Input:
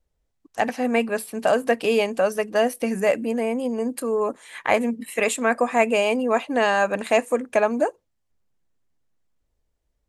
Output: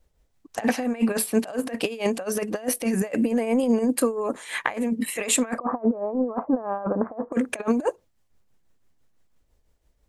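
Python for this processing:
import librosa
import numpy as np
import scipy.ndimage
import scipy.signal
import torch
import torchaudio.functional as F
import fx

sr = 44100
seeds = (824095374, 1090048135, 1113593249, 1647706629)

y = fx.steep_lowpass(x, sr, hz=1300.0, slope=48, at=(5.57, 7.32), fade=0.02)
y = fx.over_compress(y, sr, threshold_db=-26.0, ratio=-0.5)
y = fx.tremolo_shape(y, sr, shape='triangle', hz=6.0, depth_pct=55)
y = y * librosa.db_to_amplitude(5.0)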